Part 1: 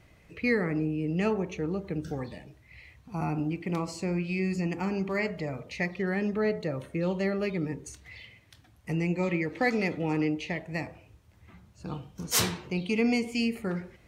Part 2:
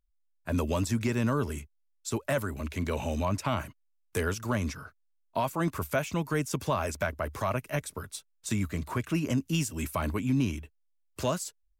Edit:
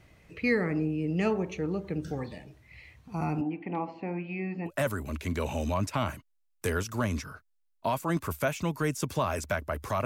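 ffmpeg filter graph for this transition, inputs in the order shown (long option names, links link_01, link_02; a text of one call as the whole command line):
ffmpeg -i cue0.wav -i cue1.wav -filter_complex "[0:a]asettb=1/sr,asplit=3[link_01][link_02][link_03];[link_01]atrim=end=3.414[link_04];[link_02]atrim=start=3.41:end=4.71,asetpts=PTS-STARTPTS,afade=type=in:duration=0.004:curve=qsin,afade=type=out:start_time=1.296:duration=0.004:curve=qsin,highpass=240,equalizer=frequency=270:width_type=q:width=4:gain=6,equalizer=frequency=380:width_type=q:width=4:gain=-5,equalizer=frequency=560:width_type=q:width=4:gain=-4,equalizer=frequency=800:width_type=q:width=4:gain=9,equalizer=frequency=1300:width_type=q:width=4:gain=-7,equalizer=frequency=2100:width_type=q:width=4:gain=-3,lowpass=frequency=2500:width=0.5412,lowpass=frequency=2500:width=1.3066[link_05];[link_03]atrim=start=4.706[link_06];[link_04][link_05]acrossfade=duration=0.004:curve1=hsin:curve2=qsin[link_07];[link_07][link_06]acrossfade=duration=0.004:curve1=qsin:curve2=hsin,apad=whole_dur=10.05,atrim=end=10.05,atrim=end=4.71,asetpts=PTS-STARTPTS[link_08];[1:a]atrim=start=2.16:end=7.56,asetpts=PTS-STARTPTS[link_09];[link_08][link_09]acrossfade=duration=0.06:curve1=tri:curve2=tri" out.wav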